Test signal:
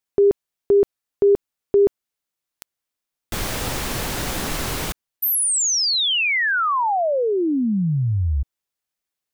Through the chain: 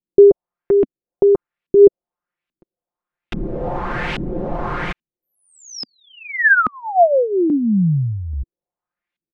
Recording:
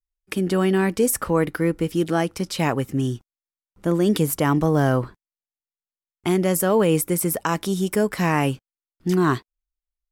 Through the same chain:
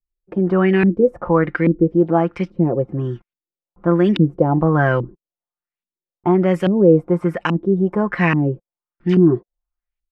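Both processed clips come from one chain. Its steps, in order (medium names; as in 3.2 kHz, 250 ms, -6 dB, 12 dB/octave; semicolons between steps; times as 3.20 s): comb 5.7 ms, depth 56%; LFO low-pass saw up 1.2 Hz 240–2900 Hz; trim +1 dB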